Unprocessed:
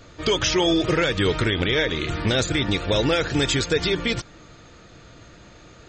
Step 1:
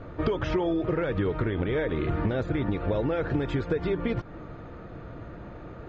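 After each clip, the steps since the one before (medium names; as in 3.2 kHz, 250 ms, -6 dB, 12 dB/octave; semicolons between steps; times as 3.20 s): low-pass 1.2 kHz 12 dB/octave; compression 10:1, threshold -30 dBFS, peak gain reduction 13.5 dB; trim +6.5 dB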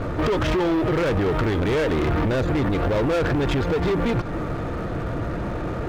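peak limiter -21.5 dBFS, peak gain reduction 7.5 dB; waveshaping leveller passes 3; trim +4 dB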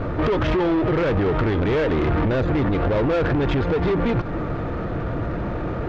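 distance through air 160 m; trim +1.5 dB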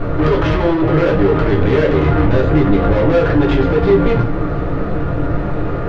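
simulated room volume 48 m³, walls mixed, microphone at 0.71 m; trim +1.5 dB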